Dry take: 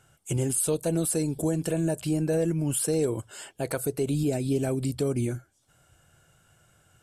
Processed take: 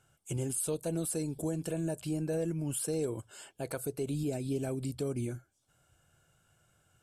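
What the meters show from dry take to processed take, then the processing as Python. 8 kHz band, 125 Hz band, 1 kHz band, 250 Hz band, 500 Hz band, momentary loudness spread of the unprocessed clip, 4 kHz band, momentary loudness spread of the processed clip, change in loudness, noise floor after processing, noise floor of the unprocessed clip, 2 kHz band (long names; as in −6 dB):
−7.5 dB, −7.5 dB, −7.5 dB, −7.5 dB, −7.5 dB, 7 LU, −7.5 dB, 7 LU, −7.5 dB, −73 dBFS, −65 dBFS, −8.0 dB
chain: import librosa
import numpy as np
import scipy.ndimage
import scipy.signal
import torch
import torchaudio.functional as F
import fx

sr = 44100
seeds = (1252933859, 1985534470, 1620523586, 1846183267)

y = fx.notch(x, sr, hz=1900.0, q=11.0)
y = F.gain(torch.from_numpy(y), -7.5).numpy()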